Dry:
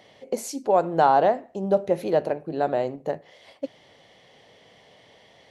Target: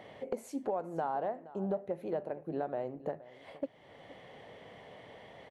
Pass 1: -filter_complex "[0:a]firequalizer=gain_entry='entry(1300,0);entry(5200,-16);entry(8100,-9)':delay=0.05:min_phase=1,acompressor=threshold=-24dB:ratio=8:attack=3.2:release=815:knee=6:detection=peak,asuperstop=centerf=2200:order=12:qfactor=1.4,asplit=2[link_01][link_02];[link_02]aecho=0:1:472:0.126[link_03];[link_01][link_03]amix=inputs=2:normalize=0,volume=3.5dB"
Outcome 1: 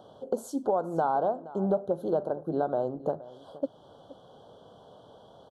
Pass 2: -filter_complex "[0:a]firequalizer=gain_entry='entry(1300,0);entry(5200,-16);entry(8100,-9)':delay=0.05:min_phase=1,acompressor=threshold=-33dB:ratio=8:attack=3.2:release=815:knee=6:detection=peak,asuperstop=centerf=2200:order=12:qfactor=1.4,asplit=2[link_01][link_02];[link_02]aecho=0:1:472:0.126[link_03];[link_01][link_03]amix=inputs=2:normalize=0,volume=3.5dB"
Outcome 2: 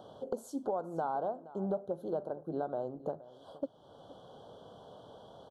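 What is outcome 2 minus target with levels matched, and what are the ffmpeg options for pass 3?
2,000 Hz band −5.5 dB
-filter_complex "[0:a]firequalizer=gain_entry='entry(1300,0);entry(5200,-16);entry(8100,-9)':delay=0.05:min_phase=1,acompressor=threshold=-33dB:ratio=8:attack=3.2:release=815:knee=6:detection=peak,asplit=2[link_01][link_02];[link_02]aecho=0:1:472:0.126[link_03];[link_01][link_03]amix=inputs=2:normalize=0,volume=3.5dB"

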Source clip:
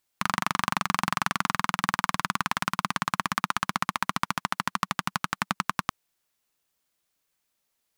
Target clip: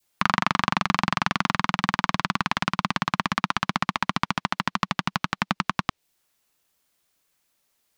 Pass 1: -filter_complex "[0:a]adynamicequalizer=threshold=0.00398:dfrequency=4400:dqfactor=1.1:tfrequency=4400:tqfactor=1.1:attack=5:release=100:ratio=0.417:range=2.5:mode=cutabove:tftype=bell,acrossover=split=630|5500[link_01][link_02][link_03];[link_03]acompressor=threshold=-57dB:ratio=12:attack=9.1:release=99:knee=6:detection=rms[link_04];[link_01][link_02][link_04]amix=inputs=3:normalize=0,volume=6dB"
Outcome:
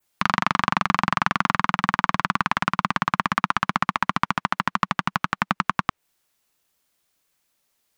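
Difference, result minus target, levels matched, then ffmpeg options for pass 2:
4,000 Hz band −4.5 dB
-filter_complex "[0:a]adynamicequalizer=threshold=0.00398:dfrequency=1300:dqfactor=1.1:tfrequency=1300:tqfactor=1.1:attack=5:release=100:ratio=0.417:range=2.5:mode=cutabove:tftype=bell,acrossover=split=630|5500[link_01][link_02][link_03];[link_03]acompressor=threshold=-57dB:ratio=12:attack=9.1:release=99:knee=6:detection=rms[link_04];[link_01][link_02][link_04]amix=inputs=3:normalize=0,volume=6dB"

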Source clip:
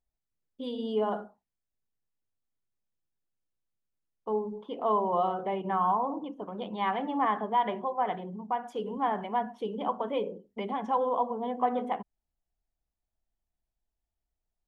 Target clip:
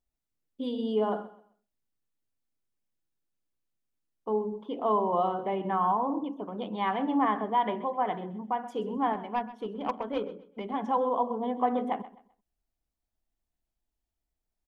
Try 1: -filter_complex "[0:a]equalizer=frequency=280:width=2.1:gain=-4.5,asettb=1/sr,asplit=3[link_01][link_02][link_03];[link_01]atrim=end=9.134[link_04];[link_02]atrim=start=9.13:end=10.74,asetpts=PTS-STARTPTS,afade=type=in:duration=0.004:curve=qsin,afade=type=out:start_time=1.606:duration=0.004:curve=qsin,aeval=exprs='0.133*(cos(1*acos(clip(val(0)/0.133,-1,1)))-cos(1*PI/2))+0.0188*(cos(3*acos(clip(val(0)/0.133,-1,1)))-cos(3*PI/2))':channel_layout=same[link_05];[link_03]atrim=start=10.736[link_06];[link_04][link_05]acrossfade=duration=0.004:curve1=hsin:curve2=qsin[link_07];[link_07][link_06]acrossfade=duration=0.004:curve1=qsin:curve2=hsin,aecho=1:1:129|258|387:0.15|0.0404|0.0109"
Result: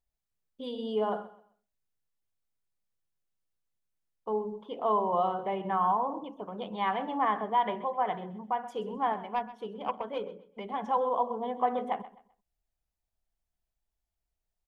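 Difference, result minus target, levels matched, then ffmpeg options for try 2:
250 Hz band −5.0 dB
-filter_complex "[0:a]equalizer=frequency=280:width=2.1:gain=5.5,asettb=1/sr,asplit=3[link_01][link_02][link_03];[link_01]atrim=end=9.134[link_04];[link_02]atrim=start=9.13:end=10.74,asetpts=PTS-STARTPTS,afade=type=in:duration=0.004:curve=qsin,afade=type=out:start_time=1.606:duration=0.004:curve=qsin,aeval=exprs='0.133*(cos(1*acos(clip(val(0)/0.133,-1,1)))-cos(1*PI/2))+0.0188*(cos(3*acos(clip(val(0)/0.133,-1,1)))-cos(3*PI/2))':channel_layout=same[link_05];[link_03]atrim=start=10.736[link_06];[link_04][link_05]acrossfade=duration=0.004:curve1=hsin:curve2=qsin[link_07];[link_07][link_06]acrossfade=duration=0.004:curve1=qsin:curve2=hsin,aecho=1:1:129|258|387:0.15|0.0404|0.0109"

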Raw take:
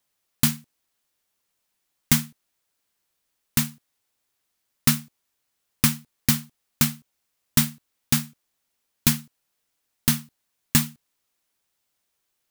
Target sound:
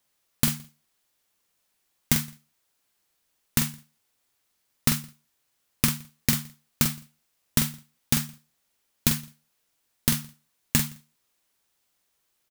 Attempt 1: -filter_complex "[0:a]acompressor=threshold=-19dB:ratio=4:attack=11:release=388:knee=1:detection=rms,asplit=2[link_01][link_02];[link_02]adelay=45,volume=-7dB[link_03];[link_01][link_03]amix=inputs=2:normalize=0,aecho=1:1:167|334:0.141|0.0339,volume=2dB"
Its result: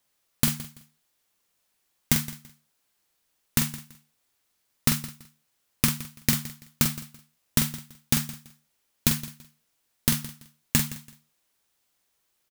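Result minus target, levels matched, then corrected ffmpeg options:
echo-to-direct +11.5 dB
-filter_complex "[0:a]acompressor=threshold=-19dB:ratio=4:attack=11:release=388:knee=1:detection=rms,asplit=2[link_01][link_02];[link_02]adelay=45,volume=-7dB[link_03];[link_01][link_03]amix=inputs=2:normalize=0,aecho=1:1:167:0.0376,volume=2dB"

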